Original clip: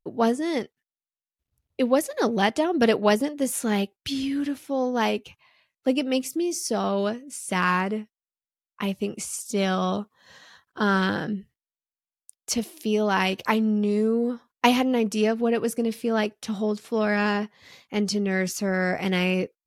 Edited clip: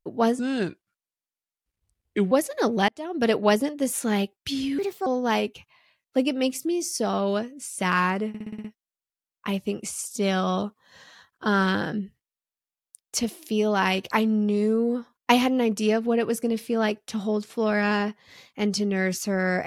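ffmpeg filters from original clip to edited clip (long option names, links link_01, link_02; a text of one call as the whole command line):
ffmpeg -i in.wav -filter_complex "[0:a]asplit=12[link_01][link_02][link_03][link_04][link_05][link_06][link_07][link_08][link_09][link_10][link_11][link_12];[link_01]atrim=end=0.394[link_13];[link_02]atrim=start=0.39:end=1.91,asetpts=PTS-STARTPTS,asetrate=34839,aresample=44100[link_14];[link_03]atrim=start=1.906:end=2.48,asetpts=PTS-STARTPTS,afade=type=out:start_time=0.57:duration=0.004:curve=hsin[link_15];[link_04]atrim=start=2.48:end=4.384,asetpts=PTS-STARTPTS,afade=type=in:duration=0.5[link_16];[link_05]atrim=start=4.38:end=4.77,asetpts=PTS-STARTPTS,asetrate=61299,aresample=44100,atrim=end_sample=12373,asetpts=PTS-STARTPTS[link_17];[link_06]atrim=start=4.766:end=8.052[link_18];[link_07]atrim=start=7.988:end=8.052[link_19];[link_08]atrim=start=7.988:end=8.052[link_20];[link_09]atrim=start=7.988:end=8.052[link_21];[link_10]atrim=start=7.988:end=8.052[link_22];[link_11]atrim=start=7.988:end=8.052[link_23];[link_12]atrim=start=7.988[link_24];[link_13][link_14]acrossfade=duration=0.004:curve1=hsin:curve2=hsin[link_25];[link_15][link_16]concat=n=2:v=0:a=1[link_26];[link_25][link_26]acrossfade=duration=0.004:curve1=hsin:curve2=hsin[link_27];[link_27][link_17]acrossfade=duration=0.004:curve1=hsin:curve2=hsin[link_28];[link_28][link_18]acrossfade=duration=0.004:curve1=hsin:curve2=hsin[link_29];[link_29][link_19]acrossfade=duration=0.004:curve1=hsin:curve2=hsin[link_30];[link_30][link_20]acrossfade=duration=0.004:curve1=hsin:curve2=hsin[link_31];[link_31][link_21]acrossfade=duration=0.004:curve1=hsin:curve2=hsin[link_32];[link_32][link_22]acrossfade=duration=0.004:curve1=hsin:curve2=hsin[link_33];[link_33][link_23]acrossfade=duration=0.004:curve1=hsin:curve2=hsin[link_34];[link_34][link_24]acrossfade=duration=0.004:curve1=hsin:curve2=hsin" out.wav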